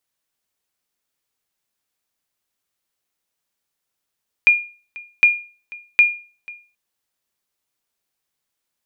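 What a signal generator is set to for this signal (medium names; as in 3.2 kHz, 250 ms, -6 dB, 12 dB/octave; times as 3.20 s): sonar ping 2.42 kHz, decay 0.37 s, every 0.76 s, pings 3, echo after 0.49 s, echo -23 dB -4.5 dBFS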